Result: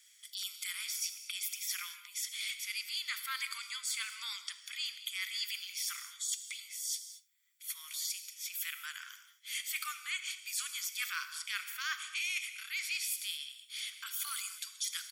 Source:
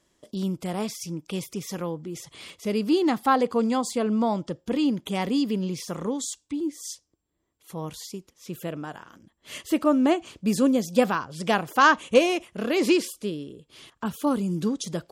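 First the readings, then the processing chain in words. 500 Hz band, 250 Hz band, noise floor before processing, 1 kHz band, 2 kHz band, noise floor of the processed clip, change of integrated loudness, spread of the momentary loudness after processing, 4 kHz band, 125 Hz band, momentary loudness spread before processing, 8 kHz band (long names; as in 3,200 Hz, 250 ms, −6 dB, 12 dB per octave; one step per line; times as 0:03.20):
below −40 dB, below −40 dB, −73 dBFS, −22.5 dB, −7.5 dB, −63 dBFS, −12.0 dB, 6 LU, −1.0 dB, below −40 dB, 17 LU, +1.0 dB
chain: Butterworth high-pass 1,600 Hz 48 dB per octave
high-shelf EQ 11,000 Hz +10.5 dB
comb filter 0.9 ms, depth 60%
reversed playback
downward compressor 6 to 1, threshold −42 dBFS, peak gain reduction 19 dB
reversed playback
single-tap delay 74 ms −21.5 dB
reverb whose tail is shaped and stops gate 250 ms flat, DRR 9 dB
level +6.5 dB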